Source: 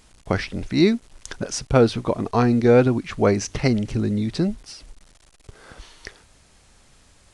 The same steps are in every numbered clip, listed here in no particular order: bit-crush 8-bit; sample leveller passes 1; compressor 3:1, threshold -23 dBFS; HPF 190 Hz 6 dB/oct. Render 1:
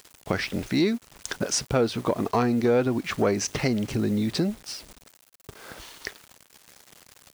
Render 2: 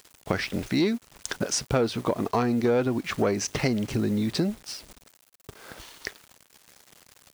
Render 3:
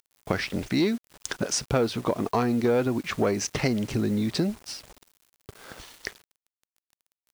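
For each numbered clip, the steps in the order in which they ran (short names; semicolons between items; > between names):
bit-crush > compressor > sample leveller > HPF; bit-crush > sample leveller > HPF > compressor; sample leveller > HPF > compressor > bit-crush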